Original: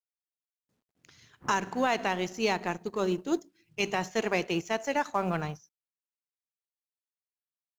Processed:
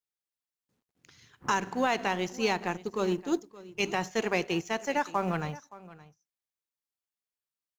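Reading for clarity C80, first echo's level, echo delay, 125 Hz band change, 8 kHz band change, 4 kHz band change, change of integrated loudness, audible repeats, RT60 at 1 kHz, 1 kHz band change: none, -19.0 dB, 0.571 s, 0.0 dB, 0.0 dB, 0.0 dB, 0.0 dB, 1, none, 0.0 dB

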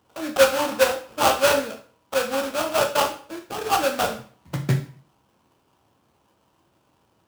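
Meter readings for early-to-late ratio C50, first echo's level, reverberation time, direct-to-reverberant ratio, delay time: 10.0 dB, none, 0.45 s, 3.5 dB, none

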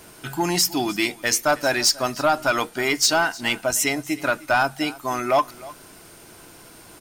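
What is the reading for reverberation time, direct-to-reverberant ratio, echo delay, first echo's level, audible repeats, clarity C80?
none, none, 0.308 s, -20.0 dB, 1, none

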